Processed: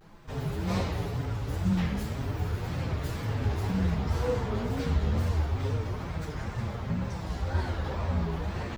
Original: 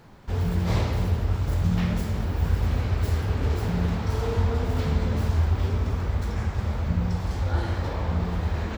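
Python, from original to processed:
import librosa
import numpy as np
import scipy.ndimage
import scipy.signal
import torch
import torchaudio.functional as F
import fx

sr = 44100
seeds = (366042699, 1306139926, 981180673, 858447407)

y = fx.chorus_voices(x, sr, voices=4, hz=0.3, base_ms=11, depth_ms=5.0, mix_pct=55)
y = fx.wow_flutter(y, sr, seeds[0], rate_hz=2.1, depth_cents=140.0)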